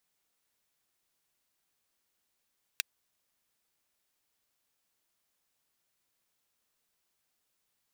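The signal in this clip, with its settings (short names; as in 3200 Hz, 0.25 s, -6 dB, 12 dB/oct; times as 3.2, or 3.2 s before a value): closed hi-hat, high-pass 2100 Hz, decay 0.02 s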